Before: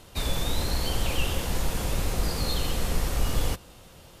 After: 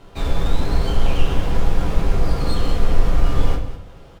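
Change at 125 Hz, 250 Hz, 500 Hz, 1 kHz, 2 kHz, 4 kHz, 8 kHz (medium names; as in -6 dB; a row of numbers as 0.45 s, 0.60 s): +8.0 dB, +7.5 dB, +7.0 dB, +6.0 dB, +2.0 dB, -1.5 dB, -7.5 dB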